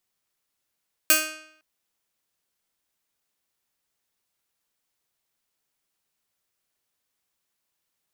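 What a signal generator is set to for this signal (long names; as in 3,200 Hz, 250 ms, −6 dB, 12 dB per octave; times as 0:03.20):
Karplus-Strong string D#4, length 0.51 s, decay 0.70 s, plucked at 0.31, bright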